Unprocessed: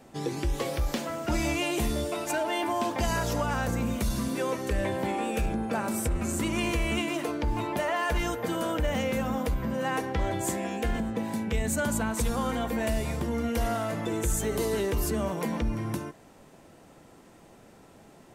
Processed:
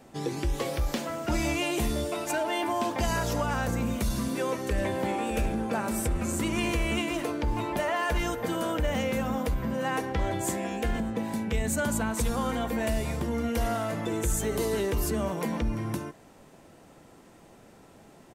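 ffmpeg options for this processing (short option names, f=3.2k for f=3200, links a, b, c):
-filter_complex "[0:a]asplit=2[a][b];[b]afade=t=in:st=4.17:d=0.01,afade=t=out:st=4.95:d=0.01,aecho=0:1:600|1200|1800|2400|3000|3600|4200|4800|5400|6000|6600|7200:0.237137|0.18971|0.151768|0.121414|0.0971315|0.0777052|0.0621641|0.0497313|0.039785|0.031828|0.0254624|0.0203699[c];[a][c]amix=inputs=2:normalize=0"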